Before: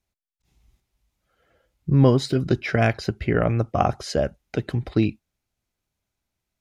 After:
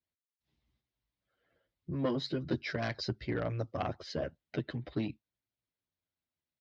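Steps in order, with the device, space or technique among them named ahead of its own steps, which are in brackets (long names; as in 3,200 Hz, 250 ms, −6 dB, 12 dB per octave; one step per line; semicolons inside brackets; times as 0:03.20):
barber-pole flanger into a guitar amplifier (barber-pole flanger 9.1 ms −0.48 Hz; soft clipping −15.5 dBFS, distortion −17 dB; loudspeaker in its box 96–4,500 Hz, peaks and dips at 200 Hz −7 dB, 410 Hz −5 dB, 790 Hz −7 dB, 1,300 Hz −5 dB, 2,500 Hz −5 dB)
harmonic and percussive parts rebalanced harmonic −8 dB
0:02.57–0:03.77: high shelf with overshoot 3,800 Hz +7 dB, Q 1.5
level −2 dB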